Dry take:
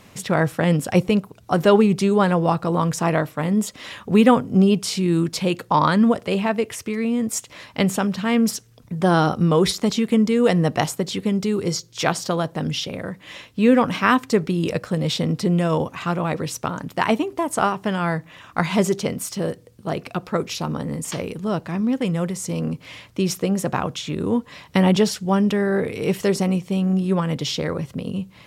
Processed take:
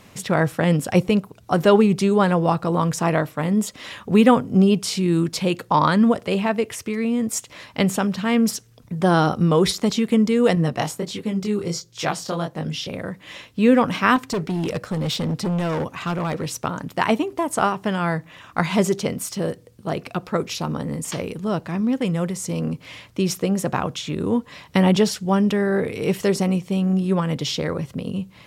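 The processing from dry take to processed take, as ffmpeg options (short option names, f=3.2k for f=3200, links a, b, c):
-filter_complex "[0:a]asettb=1/sr,asplit=3[a][b][c];[a]atrim=end=10.554[d];[b]atrim=start=10.55:end=12.87,asetpts=PTS-STARTPTS,afade=t=in:d=0.004:c=qsin,afade=t=out:st=2.316:d=0.004:c=qsin,flanger=delay=18:depth=7:speed=1.4[e];[c]atrim=start=12.866[f];[d][e]acrossfade=d=0.004:c1=hsin:c2=qsin[g];[g][f]acrossfade=d=0.004:c1=qsin:c2=hsin,asettb=1/sr,asplit=3[h][i][j];[h]atrim=end=14.164[k];[i]atrim=start=14.16:end=16.61,asetpts=PTS-STARTPTS,afade=t=in:d=0.004:c=qsin,afade=t=out:st=2.446:d=0.004:c=qsin,asoftclip=type=hard:threshold=-20dB[l];[j]atrim=start=16.606[m];[k][l]acrossfade=d=0.004:c1=hsin:c2=qsin[n];[n][m]acrossfade=d=0.004:c1=qsin:c2=hsin"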